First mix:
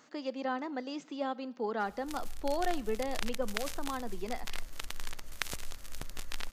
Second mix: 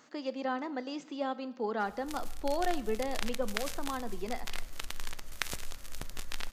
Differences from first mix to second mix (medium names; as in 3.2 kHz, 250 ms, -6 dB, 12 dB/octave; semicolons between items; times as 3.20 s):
speech: send +7.0 dB; background: send on